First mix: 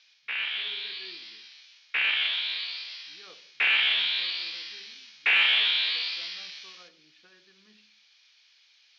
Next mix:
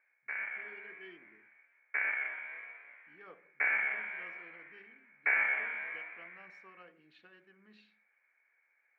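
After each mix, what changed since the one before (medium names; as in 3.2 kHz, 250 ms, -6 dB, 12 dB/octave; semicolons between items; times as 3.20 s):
background: add rippled Chebyshev low-pass 2.3 kHz, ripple 6 dB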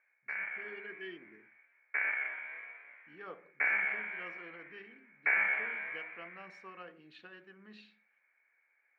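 speech +7.0 dB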